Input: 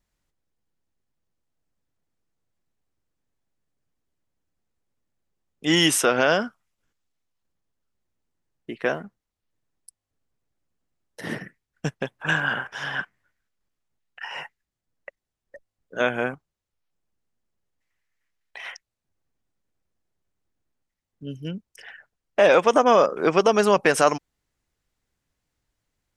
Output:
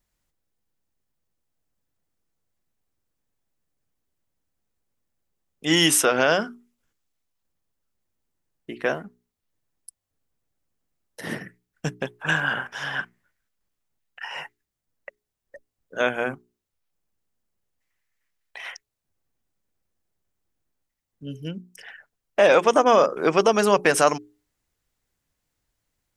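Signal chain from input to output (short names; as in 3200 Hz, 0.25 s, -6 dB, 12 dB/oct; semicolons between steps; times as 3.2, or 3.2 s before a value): high shelf 9700 Hz +8 dB; notches 60/120/180/240/300/360/420 Hz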